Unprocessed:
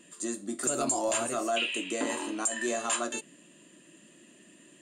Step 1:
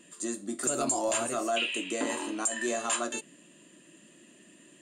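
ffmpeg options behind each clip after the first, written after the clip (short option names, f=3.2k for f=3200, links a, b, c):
-af anull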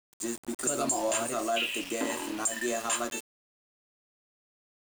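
-af "aeval=exprs='val(0)*gte(abs(val(0)),0.0141)':c=same"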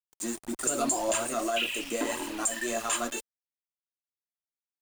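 -af "anlmdn=0.000631,aphaser=in_gain=1:out_gain=1:delay=4.4:decay=0.4:speed=1.8:type=triangular,asubboost=boost=3:cutoff=52"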